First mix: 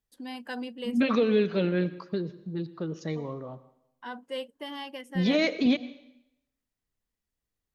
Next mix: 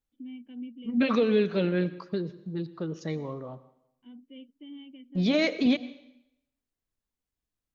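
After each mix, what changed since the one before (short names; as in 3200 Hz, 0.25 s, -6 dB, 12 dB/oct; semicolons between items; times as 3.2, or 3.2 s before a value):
first voice: add vocal tract filter i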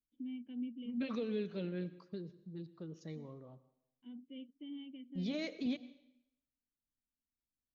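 second voice -11.5 dB; master: add bell 1200 Hz -7 dB 2.9 oct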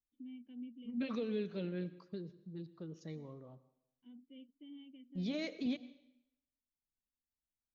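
first voice -6.0 dB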